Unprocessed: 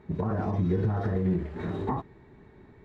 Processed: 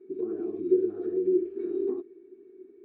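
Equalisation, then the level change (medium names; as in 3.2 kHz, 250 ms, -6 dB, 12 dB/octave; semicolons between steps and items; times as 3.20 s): two resonant band-passes 900 Hz, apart 2.6 oct; peaking EQ 490 Hz +14 dB 2.5 oct; static phaser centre 550 Hz, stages 6; 0.0 dB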